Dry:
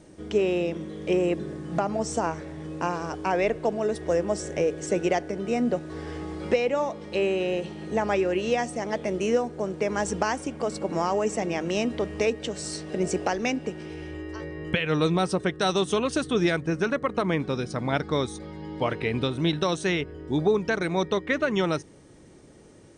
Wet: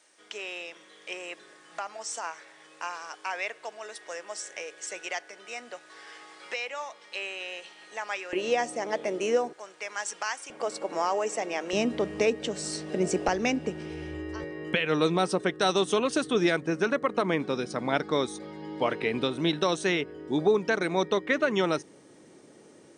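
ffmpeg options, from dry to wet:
ffmpeg -i in.wav -af "asetnsamples=nb_out_samples=441:pad=0,asendcmd='8.33 highpass f 350;9.53 highpass f 1300;10.5 highpass f 500;11.73 highpass f 140;13.28 highpass f 53;14.44 highpass f 220',highpass=1300" out.wav

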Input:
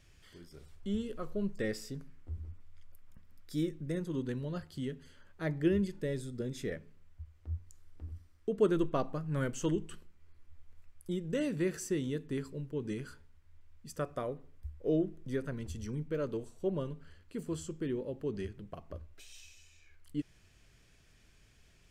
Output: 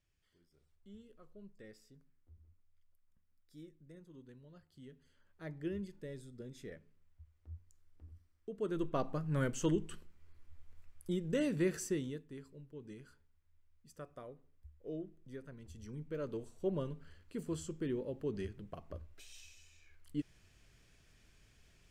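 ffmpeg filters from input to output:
ffmpeg -i in.wav -af "volume=10.5dB,afade=type=in:start_time=4.6:duration=0.88:silence=0.354813,afade=type=in:start_time=8.63:duration=0.54:silence=0.298538,afade=type=out:start_time=11.8:duration=0.46:silence=0.237137,afade=type=in:start_time=15.62:duration=1.1:silence=0.281838" out.wav

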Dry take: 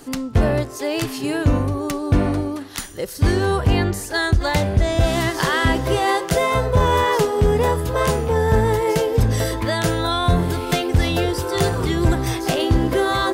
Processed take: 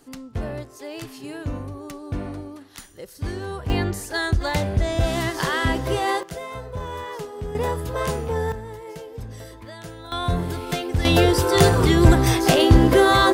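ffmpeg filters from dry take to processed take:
ffmpeg -i in.wav -af "asetnsamples=nb_out_samples=441:pad=0,asendcmd='3.7 volume volume -4dB;6.23 volume volume -15dB;7.55 volume volume -6dB;8.52 volume volume -18dB;10.12 volume volume -6dB;11.05 volume volume 4dB',volume=-12dB" out.wav

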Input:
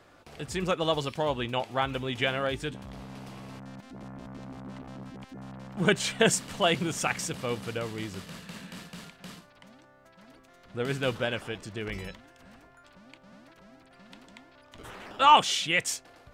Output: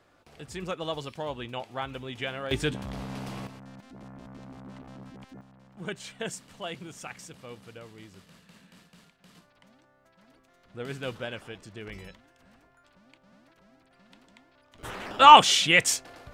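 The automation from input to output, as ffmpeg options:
ffmpeg -i in.wav -af "asetnsamples=nb_out_samples=441:pad=0,asendcmd='2.51 volume volume 6dB;3.47 volume volume -3dB;5.41 volume volume -12.5dB;9.35 volume volume -6dB;14.83 volume volume 6dB',volume=-6dB" out.wav

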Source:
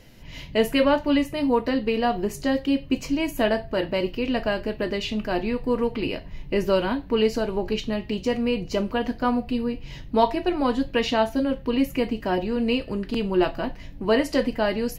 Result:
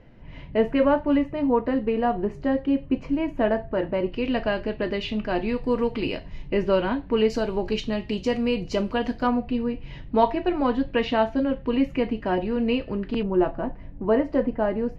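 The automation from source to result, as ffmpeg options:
ffmpeg -i in.wav -af "asetnsamples=nb_out_samples=441:pad=0,asendcmd='4.12 lowpass f 3500;5.49 lowpass f 6400;6.48 lowpass f 2900;7.3 lowpass f 7000;9.27 lowpass f 2700;13.23 lowpass f 1200',lowpass=1600" out.wav

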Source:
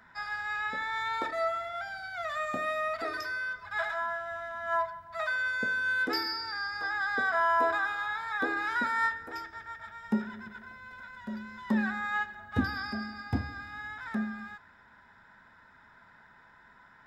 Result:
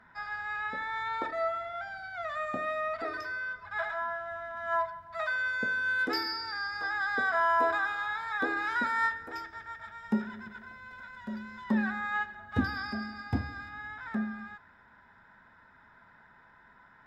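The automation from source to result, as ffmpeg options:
ffmpeg -i in.wav -af "asetnsamples=nb_out_samples=441:pad=0,asendcmd='4.57 lowpass f 4900;5.99 lowpass f 8900;11.64 lowpass f 4000;12.49 lowpass f 7300;13.69 lowpass f 2800',lowpass=frequency=2300:poles=1" out.wav

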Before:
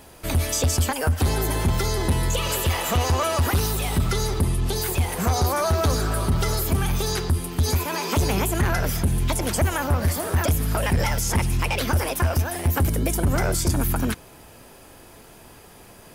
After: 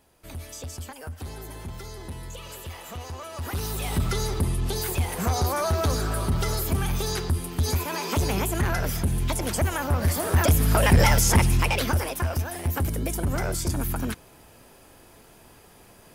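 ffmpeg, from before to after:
ffmpeg -i in.wav -af "volume=5dB,afade=type=in:start_time=3.32:duration=0.63:silence=0.237137,afade=type=in:start_time=9.87:duration=1.23:silence=0.398107,afade=type=out:start_time=11.1:duration=1.02:silence=0.316228" out.wav

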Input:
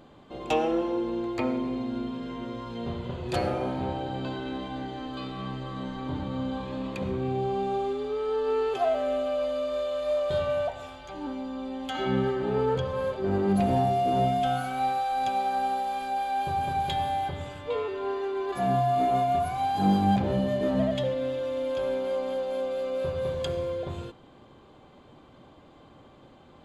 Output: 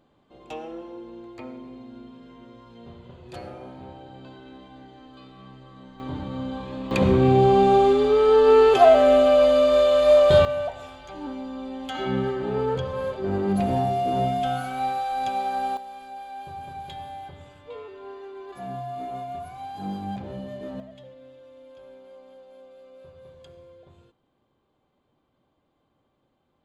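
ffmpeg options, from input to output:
ffmpeg -i in.wav -af "asetnsamples=nb_out_samples=441:pad=0,asendcmd='6 volume volume 0dB;6.91 volume volume 12dB;10.45 volume volume 0.5dB;15.77 volume volume -9.5dB;20.8 volume volume -18.5dB',volume=-11dB" out.wav

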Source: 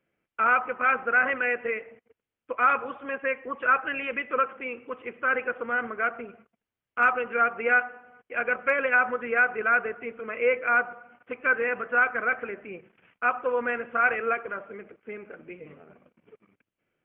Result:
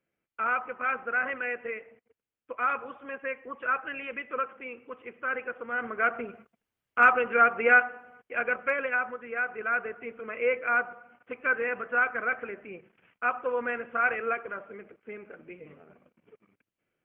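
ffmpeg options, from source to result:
ffmpeg -i in.wav -af "volume=9.5dB,afade=type=in:start_time=5.69:duration=0.47:silence=0.375837,afade=type=out:start_time=7.73:duration=1.48:silence=0.237137,afade=type=in:start_time=9.21:duration=0.95:silence=0.446684" out.wav

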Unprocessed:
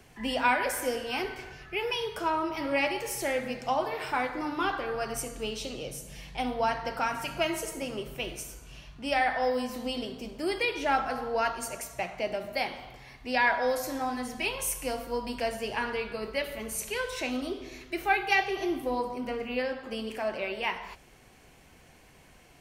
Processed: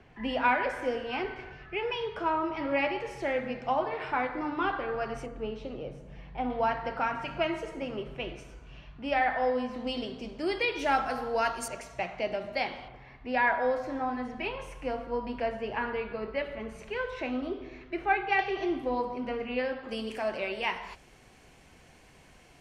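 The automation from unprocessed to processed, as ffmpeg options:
ffmpeg -i in.wav -af "asetnsamples=nb_out_samples=441:pad=0,asendcmd='5.26 lowpass f 1500;6.5 lowpass f 2600;9.87 lowpass f 4900;10.79 lowpass f 12000;11.68 lowpass f 4400;12.88 lowpass f 2100;18.39 lowpass f 3500;19.89 lowpass f 9500',lowpass=2600" out.wav

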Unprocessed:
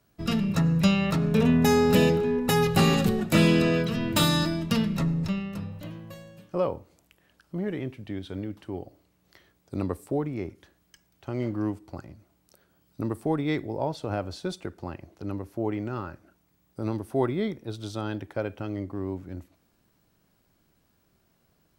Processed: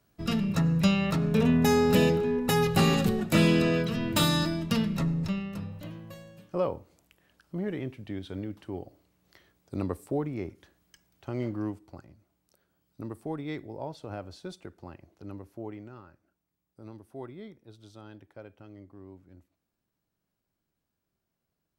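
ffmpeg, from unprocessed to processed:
ffmpeg -i in.wav -af "volume=-2dB,afade=type=out:start_time=11.36:duration=0.69:silence=0.473151,afade=type=out:start_time=15.47:duration=0.55:silence=0.421697" out.wav

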